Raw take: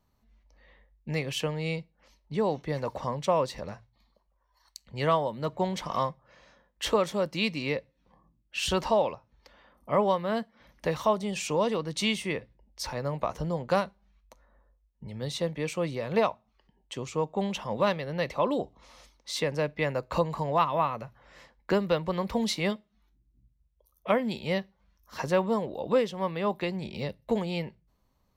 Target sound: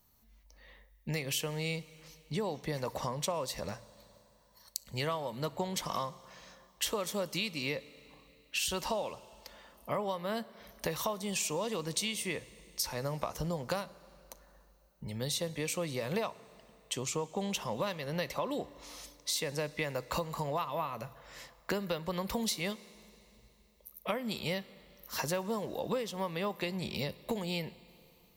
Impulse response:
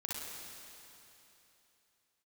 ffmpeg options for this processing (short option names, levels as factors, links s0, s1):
-filter_complex "[0:a]aemphasis=mode=production:type=75fm,acompressor=threshold=0.0251:ratio=6,asplit=2[s0][s1];[1:a]atrim=start_sample=2205[s2];[s1][s2]afir=irnorm=-1:irlink=0,volume=0.141[s3];[s0][s3]amix=inputs=2:normalize=0"